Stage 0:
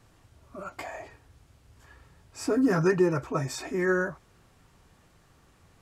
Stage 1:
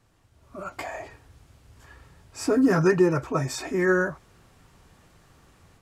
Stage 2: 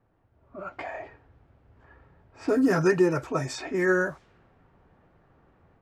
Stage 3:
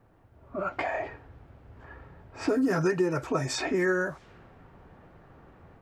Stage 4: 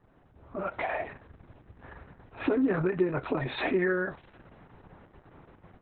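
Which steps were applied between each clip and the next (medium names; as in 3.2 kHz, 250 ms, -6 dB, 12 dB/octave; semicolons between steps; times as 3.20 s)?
level rider gain up to 9 dB; trim -5 dB
peaking EQ 1.1 kHz -4 dB 0.42 oct; level-controlled noise filter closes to 1.2 kHz, open at -21.5 dBFS; bass shelf 200 Hz -6.5 dB
compression 3:1, threshold -34 dBFS, peak gain reduction 13 dB; trim +7.5 dB
Opus 6 kbps 48 kHz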